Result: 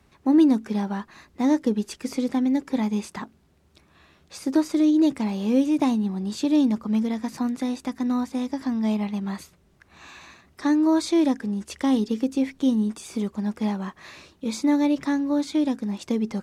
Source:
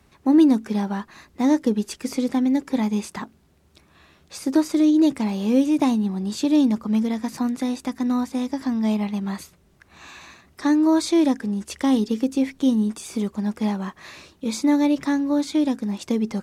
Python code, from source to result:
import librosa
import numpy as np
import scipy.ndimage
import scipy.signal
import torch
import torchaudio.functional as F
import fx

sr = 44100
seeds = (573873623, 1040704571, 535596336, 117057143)

y = fx.high_shelf(x, sr, hz=8200.0, db=-4.5)
y = y * librosa.db_to_amplitude(-2.0)